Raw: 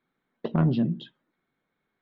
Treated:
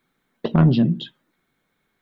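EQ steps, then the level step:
low-shelf EQ 110 Hz +6.5 dB
high-shelf EQ 2,900 Hz +9 dB
+5.5 dB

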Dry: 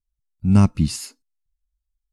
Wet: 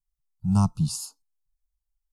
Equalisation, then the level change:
phaser with its sweep stopped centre 370 Hz, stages 8
phaser with its sweep stopped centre 880 Hz, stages 4
0.0 dB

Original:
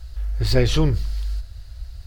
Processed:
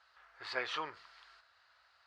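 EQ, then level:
four-pole ladder band-pass 1,400 Hz, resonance 40%
+5.0 dB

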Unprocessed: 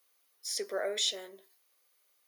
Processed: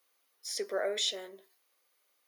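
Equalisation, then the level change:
high-shelf EQ 4,300 Hz −5.5 dB
+1.5 dB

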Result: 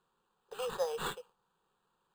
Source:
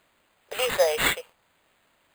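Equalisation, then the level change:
low-pass filter 2,900 Hz 6 dB per octave
phaser with its sweep stopped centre 420 Hz, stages 8
−7.0 dB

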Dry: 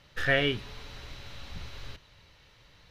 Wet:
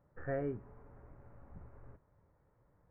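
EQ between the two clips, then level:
Gaussian smoothing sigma 7.6 samples
low-shelf EQ 72 Hz −8 dB
−6.5 dB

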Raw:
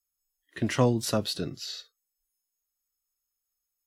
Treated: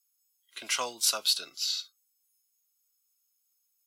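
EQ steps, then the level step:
high-pass filter 1,100 Hz 12 dB per octave
Butterworth band-reject 1,800 Hz, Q 4.4
high-shelf EQ 2,300 Hz +9 dB
0.0 dB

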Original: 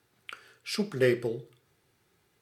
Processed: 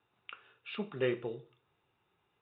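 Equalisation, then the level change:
Chebyshev low-pass with heavy ripple 3,800 Hz, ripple 9 dB
0.0 dB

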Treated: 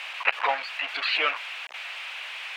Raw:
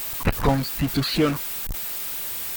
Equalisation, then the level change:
high-pass filter 660 Hz 24 dB per octave
low-pass with resonance 2,600 Hz, resonance Q 3.3
0.0 dB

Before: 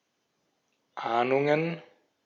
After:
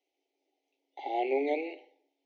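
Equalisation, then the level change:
Chebyshev high-pass with heavy ripple 270 Hz, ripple 6 dB
elliptic band-stop filter 810–2,100 Hz, stop band 40 dB
Bessel low-pass filter 3,800 Hz, order 2
0.0 dB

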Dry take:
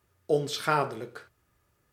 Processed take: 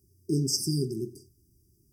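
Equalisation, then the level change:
linear-phase brick-wall band-stop 410–4,700 Hz
dynamic equaliser 6,700 Hz, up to +6 dB, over −53 dBFS, Q 0.81
notch filter 7,000 Hz, Q 6.8
+7.5 dB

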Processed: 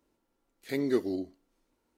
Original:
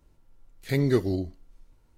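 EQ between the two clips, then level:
high-pass filter 72 Hz 6 dB per octave
low shelf with overshoot 180 Hz −11 dB, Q 1.5
−5.5 dB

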